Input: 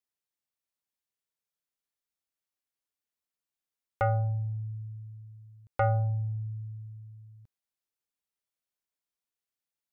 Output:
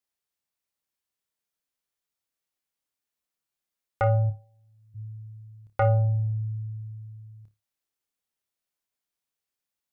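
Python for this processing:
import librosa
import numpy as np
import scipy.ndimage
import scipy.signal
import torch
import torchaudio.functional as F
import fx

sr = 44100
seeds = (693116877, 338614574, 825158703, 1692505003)

p1 = fx.highpass(x, sr, hz=fx.line((4.29, 1100.0), (4.94, 350.0)), slope=12, at=(4.29, 4.94), fade=0.02)
p2 = p1 + fx.room_flutter(p1, sr, wall_m=4.9, rt60_s=0.22, dry=0)
y = p2 * librosa.db_to_amplitude(2.5)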